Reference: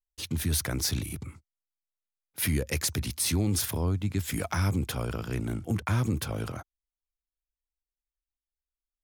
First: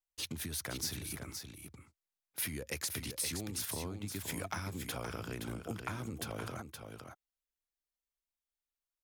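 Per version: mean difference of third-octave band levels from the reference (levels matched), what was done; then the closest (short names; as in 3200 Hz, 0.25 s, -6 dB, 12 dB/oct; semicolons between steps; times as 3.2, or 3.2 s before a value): 6.0 dB: compressor, threshold -32 dBFS, peak gain reduction 9.5 dB; low shelf 190 Hz -9.5 dB; echo 0.52 s -7 dB; gain -1.5 dB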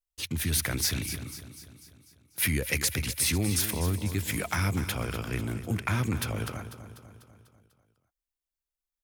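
4.5 dB: high shelf 7900 Hz +5 dB; feedback echo 0.247 s, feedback 55%, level -11 dB; dynamic EQ 2200 Hz, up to +7 dB, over -49 dBFS, Q 1.2; gain -1.5 dB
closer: second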